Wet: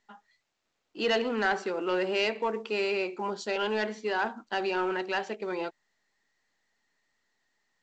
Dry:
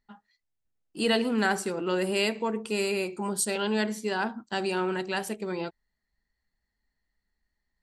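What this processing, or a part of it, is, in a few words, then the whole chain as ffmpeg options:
telephone: -af "highpass=360,lowpass=3500,asoftclip=type=tanh:threshold=-21dB,volume=2.5dB" -ar 16000 -c:a pcm_mulaw

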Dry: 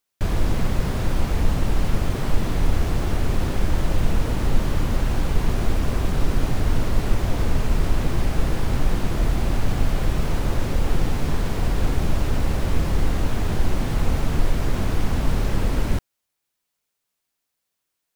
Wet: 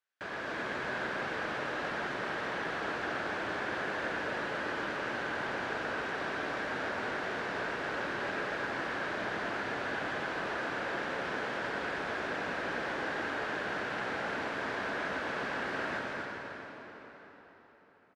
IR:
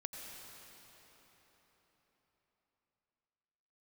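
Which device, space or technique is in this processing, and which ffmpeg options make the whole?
station announcement: -filter_complex "[0:a]highpass=420,lowpass=3900,equalizer=frequency=1600:width_type=o:width=0.48:gain=10.5,aecho=1:1:122.4|262.4:0.355|0.631[link_01];[1:a]atrim=start_sample=2205[link_02];[link_01][link_02]afir=irnorm=-1:irlink=0,volume=-4.5dB"

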